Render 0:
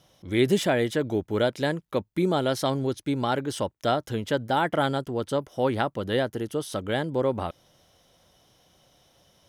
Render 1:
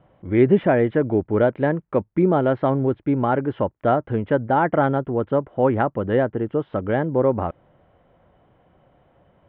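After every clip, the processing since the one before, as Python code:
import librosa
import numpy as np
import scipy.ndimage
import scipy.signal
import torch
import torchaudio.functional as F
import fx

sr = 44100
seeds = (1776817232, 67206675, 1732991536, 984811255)

y = scipy.signal.sosfilt(scipy.signal.bessel(8, 1400.0, 'lowpass', norm='mag', fs=sr, output='sos'), x)
y = y * 10.0 ** (6.5 / 20.0)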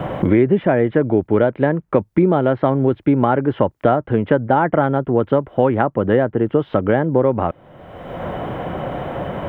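y = fx.band_squash(x, sr, depth_pct=100)
y = y * 10.0 ** (3.0 / 20.0)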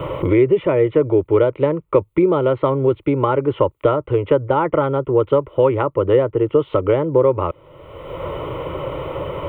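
y = fx.fixed_phaser(x, sr, hz=1100.0, stages=8)
y = y * 10.0 ** (3.0 / 20.0)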